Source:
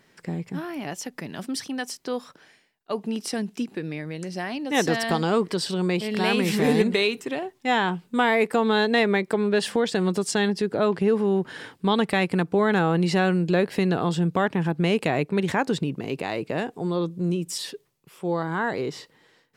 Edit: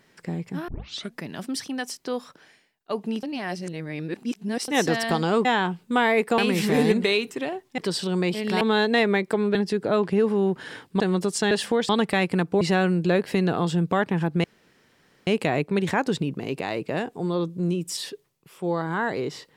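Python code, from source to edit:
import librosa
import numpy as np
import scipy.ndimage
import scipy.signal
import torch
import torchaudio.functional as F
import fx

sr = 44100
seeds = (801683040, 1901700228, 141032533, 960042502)

y = fx.edit(x, sr, fx.tape_start(start_s=0.68, length_s=0.48),
    fx.reverse_span(start_s=3.23, length_s=1.45),
    fx.swap(start_s=5.45, length_s=0.83, other_s=7.68, other_length_s=0.93),
    fx.swap(start_s=9.55, length_s=0.38, other_s=10.44, other_length_s=1.45),
    fx.cut(start_s=12.61, length_s=0.44),
    fx.insert_room_tone(at_s=14.88, length_s=0.83), tone=tone)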